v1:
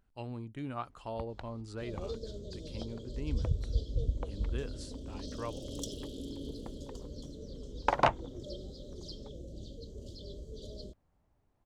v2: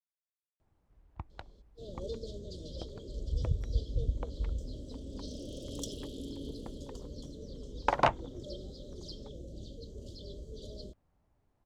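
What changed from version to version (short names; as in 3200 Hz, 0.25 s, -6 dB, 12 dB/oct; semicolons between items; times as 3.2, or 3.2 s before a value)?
speech: muted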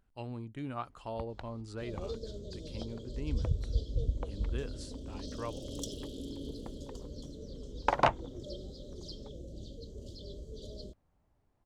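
speech: unmuted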